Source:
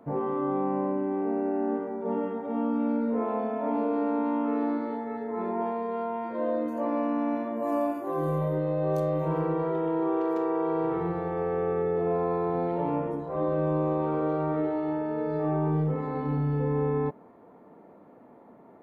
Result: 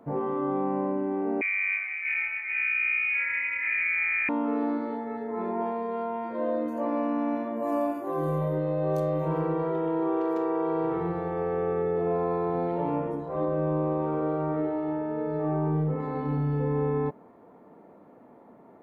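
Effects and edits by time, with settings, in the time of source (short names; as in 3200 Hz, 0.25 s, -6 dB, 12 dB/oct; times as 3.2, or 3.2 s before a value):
1.41–4.29 inverted band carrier 2700 Hz
13.45–16 air absorption 220 m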